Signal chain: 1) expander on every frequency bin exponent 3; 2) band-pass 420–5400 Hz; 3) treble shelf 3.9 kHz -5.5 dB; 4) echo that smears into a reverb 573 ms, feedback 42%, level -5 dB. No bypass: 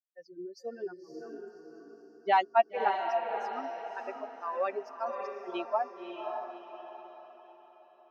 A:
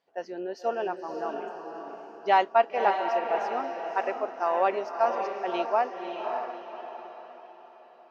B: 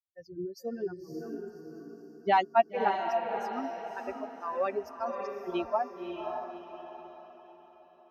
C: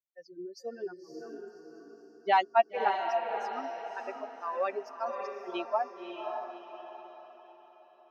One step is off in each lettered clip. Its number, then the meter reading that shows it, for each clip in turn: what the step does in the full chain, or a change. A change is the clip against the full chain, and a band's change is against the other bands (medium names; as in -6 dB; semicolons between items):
1, crest factor change -2.0 dB; 2, 250 Hz band +6.0 dB; 3, 4 kHz band +2.0 dB